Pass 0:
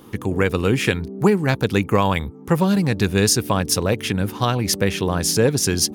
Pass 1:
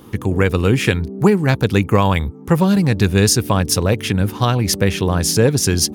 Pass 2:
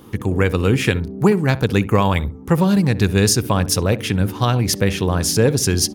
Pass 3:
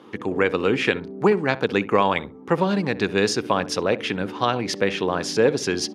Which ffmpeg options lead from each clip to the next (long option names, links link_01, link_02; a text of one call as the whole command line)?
ffmpeg -i in.wav -af "equalizer=frequency=71:width_type=o:width=2:gain=5.5,volume=2dB" out.wav
ffmpeg -i in.wav -filter_complex "[0:a]asplit=2[link_01][link_02];[link_02]adelay=65,lowpass=frequency=1000:poles=1,volume=-14dB,asplit=2[link_03][link_04];[link_04]adelay=65,lowpass=frequency=1000:poles=1,volume=0.28,asplit=2[link_05][link_06];[link_06]adelay=65,lowpass=frequency=1000:poles=1,volume=0.28[link_07];[link_01][link_03][link_05][link_07]amix=inputs=4:normalize=0,volume=-1.5dB" out.wav
ffmpeg -i in.wav -af "highpass=300,lowpass=3800" out.wav